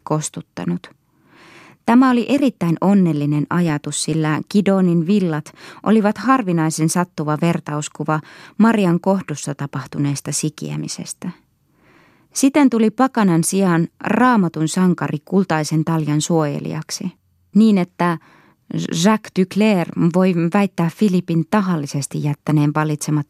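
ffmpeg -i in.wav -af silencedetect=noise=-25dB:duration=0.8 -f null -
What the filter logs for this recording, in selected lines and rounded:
silence_start: 0.84
silence_end: 1.88 | silence_duration: 1.03
silence_start: 11.30
silence_end: 12.36 | silence_duration: 1.06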